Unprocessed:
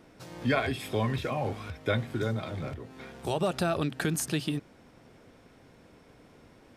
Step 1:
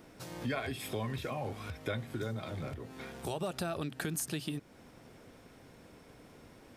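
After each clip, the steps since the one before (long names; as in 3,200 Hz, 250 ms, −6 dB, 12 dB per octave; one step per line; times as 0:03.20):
high-shelf EQ 9,100 Hz +9 dB
downward compressor 2 to 1, threshold −39 dBFS, peak gain reduction 9.5 dB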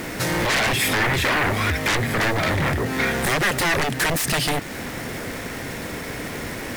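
bit-depth reduction 10 bits, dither none
sine wavefolder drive 17 dB, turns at −22 dBFS
parametric band 1,900 Hz +9 dB 0.54 octaves
level +3 dB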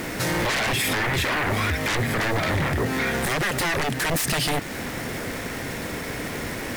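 brickwall limiter −17 dBFS, peak gain reduction 5.5 dB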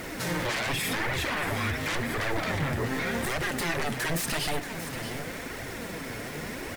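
single-tap delay 631 ms −11 dB
convolution reverb RT60 0.50 s, pre-delay 17 ms, DRR 12.5 dB
flanger 0.89 Hz, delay 1.3 ms, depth 8 ms, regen +40%
level −2.5 dB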